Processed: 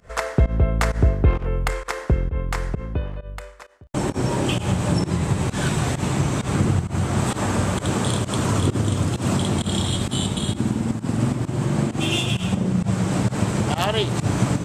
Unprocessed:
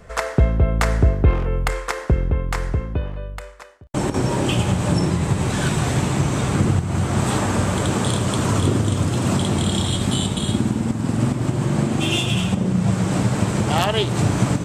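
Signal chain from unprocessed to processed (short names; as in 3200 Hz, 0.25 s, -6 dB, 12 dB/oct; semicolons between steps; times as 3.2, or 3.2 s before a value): pump 131 bpm, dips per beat 1, -21 dB, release 0.103 s; gain -1.5 dB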